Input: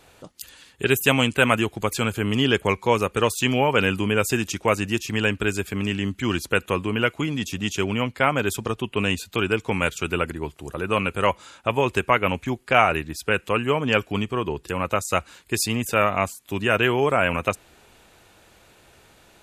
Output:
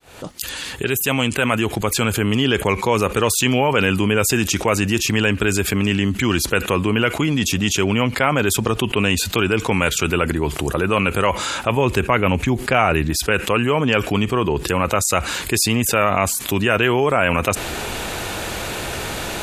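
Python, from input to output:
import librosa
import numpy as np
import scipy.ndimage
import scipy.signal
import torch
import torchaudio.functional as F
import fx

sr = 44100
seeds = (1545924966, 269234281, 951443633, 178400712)

y = fx.fade_in_head(x, sr, length_s=3.02)
y = fx.low_shelf(y, sr, hz=340.0, db=6.0, at=(11.76, 13.11))
y = fx.env_flatten(y, sr, amount_pct=70)
y = y * 10.0 ** (-1.5 / 20.0)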